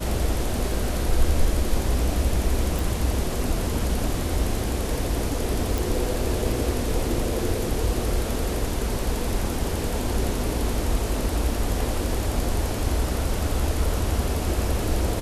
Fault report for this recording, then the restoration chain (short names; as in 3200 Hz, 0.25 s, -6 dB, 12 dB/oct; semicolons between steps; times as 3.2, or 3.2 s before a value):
2.79 pop
5.78 pop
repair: de-click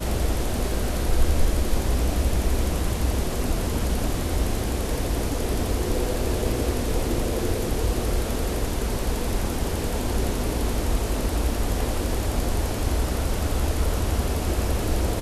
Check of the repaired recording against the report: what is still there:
none